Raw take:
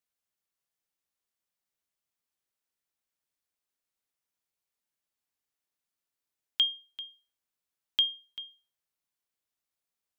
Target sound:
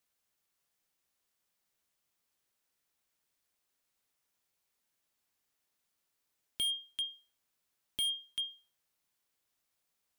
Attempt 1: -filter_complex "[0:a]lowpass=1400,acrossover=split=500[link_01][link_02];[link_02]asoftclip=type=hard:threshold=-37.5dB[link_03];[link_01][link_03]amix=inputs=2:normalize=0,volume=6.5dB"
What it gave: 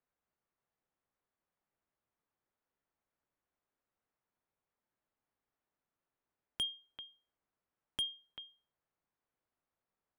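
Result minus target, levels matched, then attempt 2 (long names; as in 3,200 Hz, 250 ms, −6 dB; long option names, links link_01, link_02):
1,000 Hz band +12.0 dB
-filter_complex "[0:a]acrossover=split=500[link_01][link_02];[link_02]asoftclip=type=hard:threshold=-37.5dB[link_03];[link_01][link_03]amix=inputs=2:normalize=0,volume=6.5dB"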